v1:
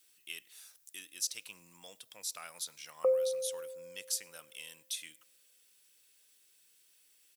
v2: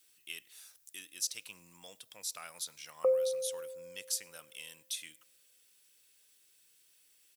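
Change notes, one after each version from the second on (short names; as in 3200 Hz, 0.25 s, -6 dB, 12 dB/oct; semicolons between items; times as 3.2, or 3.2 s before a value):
master: add low shelf 64 Hz +11.5 dB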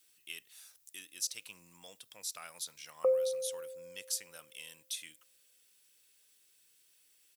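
reverb: off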